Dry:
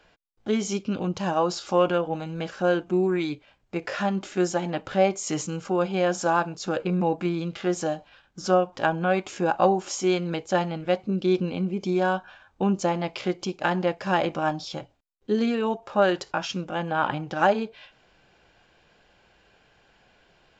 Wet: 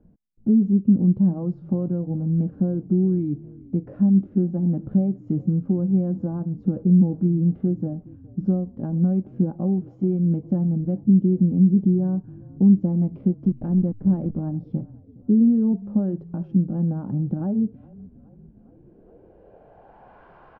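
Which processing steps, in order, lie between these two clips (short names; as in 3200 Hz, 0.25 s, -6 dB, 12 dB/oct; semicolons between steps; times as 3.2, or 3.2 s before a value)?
13.34–14.41 level-crossing sampler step -30.5 dBFS; compressor 2:1, threshold -31 dBFS, peak gain reduction 9.5 dB; frequency-shifting echo 0.414 s, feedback 59%, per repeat -31 Hz, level -22 dB; low-pass sweep 210 Hz -> 1100 Hz, 18.46–20.26; gain +9 dB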